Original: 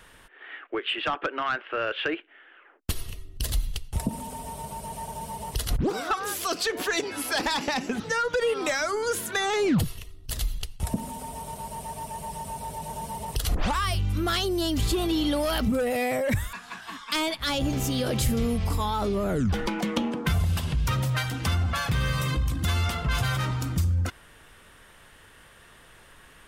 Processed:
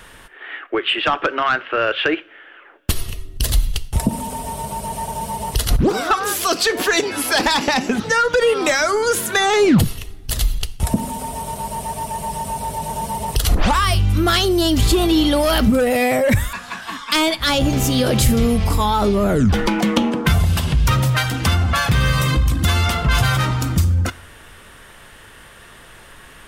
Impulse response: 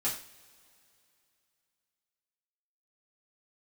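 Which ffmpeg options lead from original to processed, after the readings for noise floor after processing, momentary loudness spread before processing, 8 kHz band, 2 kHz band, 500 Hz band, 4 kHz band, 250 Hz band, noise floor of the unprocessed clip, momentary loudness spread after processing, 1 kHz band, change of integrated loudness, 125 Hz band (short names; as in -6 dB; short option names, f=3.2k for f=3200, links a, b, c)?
-43 dBFS, 11 LU, +9.5 dB, +9.5 dB, +9.5 dB, +9.5 dB, +10.0 dB, -53 dBFS, 11 LU, +10.0 dB, +9.5 dB, +9.0 dB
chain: -filter_complex "[0:a]asplit=2[a][b];[1:a]atrim=start_sample=2205[c];[b][c]afir=irnorm=-1:irlink=0,volume=-20dB[d];[a][d]amix=inputs=2:normalize=0,volume=9dB"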